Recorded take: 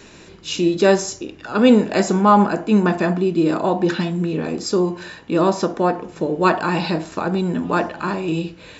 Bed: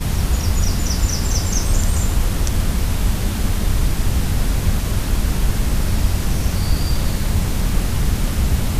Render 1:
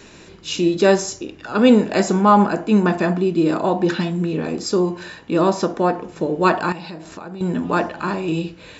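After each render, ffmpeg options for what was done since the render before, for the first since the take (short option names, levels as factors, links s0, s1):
-filter_complex "[0:a]asettb=1/sr,asplit=3[s0][s1][s2];[s0]atrim=end=6.724[s3];[s1]atrim=start=6.72:end=7.41,asetpts=PTS-STARTPTS,afade=t=in:d=0.004:c=qsin,afade=t=out:st=0.686:d=0.004:c=qsin,acompressor=threshold=0.02:ratio=3:attack=3.2:release=140:knee=1:detection=peak[s4];[s2]atrim=start=7.406[s5];[s3][s4]acrossfade=d=0.004:c1=hsin:c2=qsin[s6];[s6][s5]acrossfade=d=0.004:c1=qsin:c2=hsin"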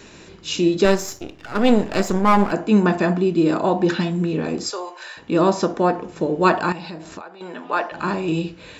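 -filter_complex "[0:a]asettb=1/sr,asplit=3[s0][s1][s2];[s0]atrim=end=0.854[s3];[s1]atrim=start=0.85:end=2.52,asetpts=PTS-STARTPTS,afade=t=in:d=0.004:c=qsin,afade=t=out:st=1.666:d=0.004:c=qsin,aeval=exprs='if(lt(val(0),0),0.251*val(0),val(0))':c=same[s4];[s2]atrim=start=2.516[s5];[s3][s4]acrossfade=d=0.004:c1=hsin:c2=qsin[s6];[s6][s5]acrossfade=d=0.004:c1=qsin:c2=hsin,asettb=1/sr,asplit=3[s7][s8][s9];[s7]atrim=end=4.704[s10];[s8]atrim=start=4.7:end=5.17,asetpts=PTS-STARTPTS,afade=t=in:d=0.004:c=qsin,afade=t=out:st=0.466:d=0.004:c=qsin,highpass=f=580:w=0.5412,highpass=f=580:w=1.3066[s11];[s9]atrim=start=5.166[s12];[s10][s11]acrossfade=d=0.004:c1=hsin:c2=qsin[s13];[s13][s12]acrossfade=d=0.004:c1=qsin:c2=hsin,asettb=1/sr,asplit=3[s14][s15][s16];[s14]atrim=end=7.214[s17];[s15]atrim=start=7.21:end=7.92,asetpts=PTS-STARTPTS,afade=t=in:d=0.004:c=qsin,afade=t=out:st=0.706:d=0.004:c=qsin,highpass=590,lowpass=4400[s18];[s16]atrim=start=7.916[s19];[s17][s18]acrossfade=d=0.004:c1=hsin:c2=qsin[s20];[s20][s19]acrossfade=d=0.004:c1=qsin:c2=hsin"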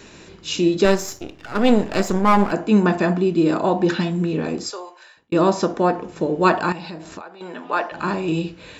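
-filter_complex "[0:a]asplit=2[s0][s1];[s0]atrim=end=5.32,asetpts=PTS-STARTPTS,afade=t=out:st=4.47:d=0.85[s2];[s1]atrim=start=5.32,asetpts=PTS-STARTPTS,afade=t=in:d=0.004:c=hsin[s3];[s2][s3]concat=n=2:v=0:a=1"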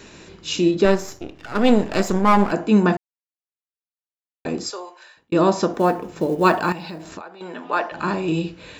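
-filter_complex "[0:a]asettb=1/sr,asplit=3[s0][s1][s2];[s0]atrim=end=0.714[s3];[s1]atrim=start=0.71:end=1.36,asetpts=PTS-STARTPTS,afade=t=in:d=0.004:c=qsin,afade=t=out:st=0.646:d=0.004:c=qsin,highshelf=f=3900:g=-8.5[s4];[s2]atrim=start=1.356[s5];[s3][s4]acrossfade=d=0.004:c1=hsin:c2=qsin[s6];[s6][s5]acrossfade=d=0.004:c1=qsin:c2=hsin,asplit=3[s7][s8][s9];[s7]afade=t=out:st=5.73:d=0.02[s10];[s8]acrusher=bits=8:mode=log:mix=0:aa=0.000001,afade=t=in:st=5.73:d=0.02,afade=t=out:st=7.1:d=0.02[s11];[s9]afade=t=in:st=7.1:d=0.02[s12];[s10][s11][s12]amix=inputs=3:normalize=0,asplit=3[s13][s14][s15];[s13]atrim=end=2.97,asetpts=PTS-STARTPTS,afade=t=out:st=2.966:d=0.004:c=hsin[s16];[s14]atrim=start=2.97:end=4.45,asetpts=PTS-STARTPTS,volume=0[s17];[s15]atrim=start=4.45,asetpts=PTS-STARTPTS,afade=t=in:d=0.004:c=hsin[s18];[s16][s17][s18]concat=n=3:v=0:a=1"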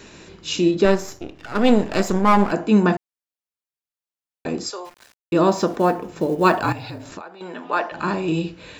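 -filter_complex "[0:a]asplit=3[s0][s1][s2];[s0]afade=t=out:st=4.84:d=0.02[s3];[s1]aeval=exprs='val(0)*gte(abs(val(0)),0.00841)':c=same,afade=t=in:st=4.84:d=0.02,afade=t=out:st=5.75:d=0.02[s4];[s2]afade=t=in:st=5.75:d=0.02[s5];[s3][s4][s5]amix=inputs=3:normalize=0,asettb=1/sr,asplit=3[s6][s7][s8];[s6]atrim=end=6.614[s9];[s7]atrim=start=6.61:end=7.12,asetpts=PTS-STARTPTS,afade=t=in:d=0.004:c=qsin,afade=t=out:st=0.506:d=0.004:c=qsin,afreqshift=-54[s10];[s8]atrim=start=7.116[s11];[s9][s10]acrossfade=d=0.004:c1=hsin:c2=qsin[s12];[s12][s11]acrossfade=d=0.004:c1=qsin:c2=hsin"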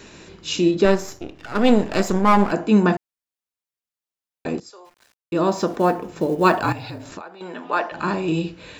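-filter_complex "[0:a]asplit=2[s0][s1];[s0]atrim=end=4.6,asetpts=PTS-STARTPTS,afade=t=out:st=4.596:d=0.004:c=hsin:silence=0.133352[s2];[s1]atrim=start=4.6,asetpts=PTS-STARTPTS,afade=t=in:d=1.28:silence=0.133352[s3];[s2][s3]concat=n=2:v=0:a=1"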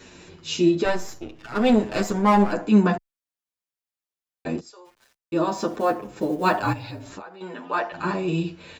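-filter_complex "[0:a]asplit=2[s0][s1];[s1]adelay=8.4,afreqshift=-0.25[s2];[s0][s2]amix=inputs=2:normalize=1"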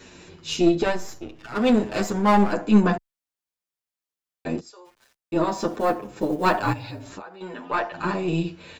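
-af "aeval=exprs='0.501*(cos(1*acos(clip(val(0)/0.501,-1,1)))-cos(1*PI/2))+0.0562*(cos(4*acos(clip(val(0)/0.501,-1,1)))-cos(4*PI/2))':c=same"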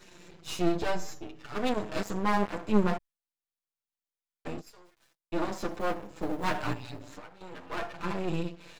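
-af "flanger=delay=5.6:depth=1.3:regen=-8:speed=0.36:shape=triangular,aeval=exprs='max(val(0),0)':c=same"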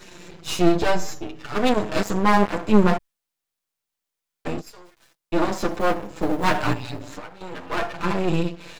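-af "volume=2.99,alimiter=limit=0.708:level=0:latency=1"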